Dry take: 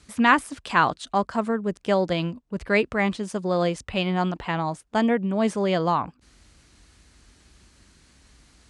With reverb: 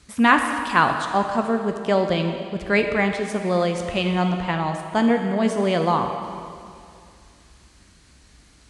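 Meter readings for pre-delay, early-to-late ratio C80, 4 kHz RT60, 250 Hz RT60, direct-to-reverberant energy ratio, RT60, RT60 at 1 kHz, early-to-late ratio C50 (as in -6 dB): 5 ms, 6.5 dB, 2.3 s, 2.4 s, 5.0 dB, 2.4 s, 2.4 s, 6.0 dB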